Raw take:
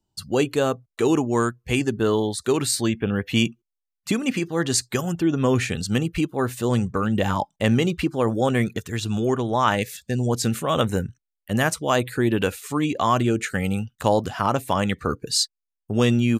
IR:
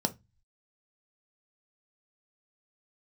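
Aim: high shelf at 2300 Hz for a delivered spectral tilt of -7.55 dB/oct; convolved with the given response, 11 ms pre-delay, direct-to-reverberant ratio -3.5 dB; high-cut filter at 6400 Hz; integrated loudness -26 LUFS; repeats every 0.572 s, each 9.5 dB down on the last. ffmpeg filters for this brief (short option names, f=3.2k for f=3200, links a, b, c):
-filter_complex "[0:a]lowpass=6.4k,highshelf=f=2.3k:g=-7.5,aecho=1:1:572|1144|1716|2288:0.335|0.111|0.0365|0.012,asplit=2[a][b];[1:a]atrim=start_sample=2205,adelay=11[c];[b][c]afir=irnorm=-1:irlink=0,volume=-2.5dB[d];[a][d]amix=inputs=2:normalize=0,volume=-13dB"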